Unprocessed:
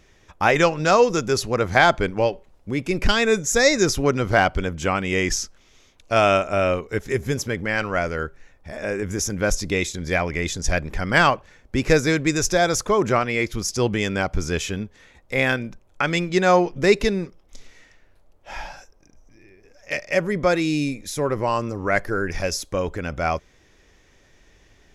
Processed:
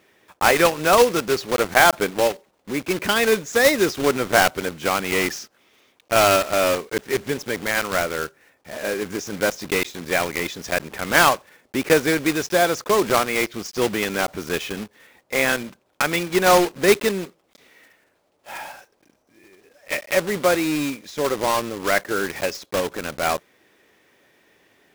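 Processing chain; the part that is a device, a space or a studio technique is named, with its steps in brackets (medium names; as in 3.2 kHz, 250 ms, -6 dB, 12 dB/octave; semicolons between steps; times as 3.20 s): early digital voice recorder (band-pass 230–3600 Hz; block-companded coder 3-bit); trim +1 dB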